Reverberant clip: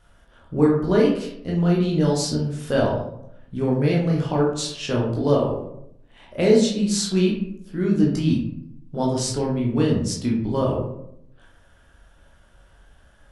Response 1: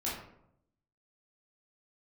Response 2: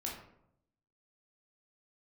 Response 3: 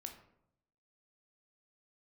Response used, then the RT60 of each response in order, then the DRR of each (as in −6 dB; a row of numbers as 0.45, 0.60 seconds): 2; 0.75, 0.75, 0.75 seconds; −7.5, −3.0, 4.0 decibels